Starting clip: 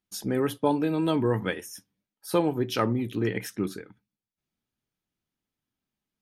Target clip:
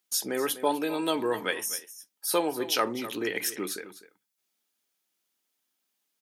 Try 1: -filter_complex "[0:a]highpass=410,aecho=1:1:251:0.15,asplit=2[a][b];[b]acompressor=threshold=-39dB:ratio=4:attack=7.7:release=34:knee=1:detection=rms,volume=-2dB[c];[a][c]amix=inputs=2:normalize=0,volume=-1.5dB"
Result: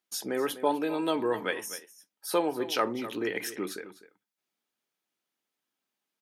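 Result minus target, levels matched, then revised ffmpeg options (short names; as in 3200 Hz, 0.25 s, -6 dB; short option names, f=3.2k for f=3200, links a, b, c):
8000 Hz band -6.0 dB
-filter_complex "[0:a]highpass=410,highshelf=f=3.7k:g=11,aecho=1:1:251:0.15,asplit=2[a][b];[b]acompressor=threshold=-39dB:ratio=4:attack=7.7:release=34:knee=1:detection=rms,volume=-2dB[c];[a][c]amix=inputs=2:normalize=0,volume=-1.5dB"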